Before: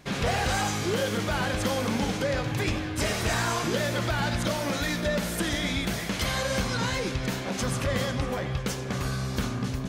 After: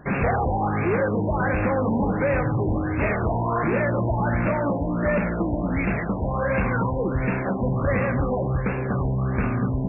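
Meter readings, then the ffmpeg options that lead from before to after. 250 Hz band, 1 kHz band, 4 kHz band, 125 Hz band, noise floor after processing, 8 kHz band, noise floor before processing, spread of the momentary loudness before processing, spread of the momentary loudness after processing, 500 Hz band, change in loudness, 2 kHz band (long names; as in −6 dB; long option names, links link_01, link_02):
+6.0 dB, +5.0 dB, below −30 dB, +6.0 dB, −27 dBFS, below −40 dB, −33 dBFS, 4 LU, 3 LU, +5.5 dB, +4.0 dB, +1.5 dB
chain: -af "aeval=exprs='0.141*sin(PI/2*1.58*val(0)/0.141)':channel_layout=same,afftfilt=real='re*lt(b*sr/1024,1000*pow(2800/1000,0.5+0.5*sin(2*PI*1.4*pts/sr)))':imag='im*lt(b*sr/1024,1000*pow(2800/1000,0.5+0.5*sin(2*PI*1.4*pts/sr)))':win_size=1024:overlap=0.75"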